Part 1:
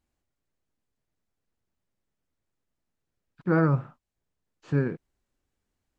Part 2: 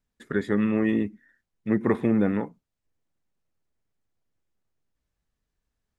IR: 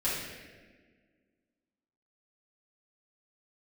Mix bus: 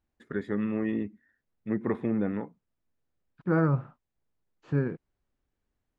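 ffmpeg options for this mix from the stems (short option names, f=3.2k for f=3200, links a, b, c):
-filter_complex "[0:a]volume=-2dB[a];[1:a]volume=-6dB[b];[a][b]amix=inputs=2:normalize=0,lowpass=f=2.5k:p=1"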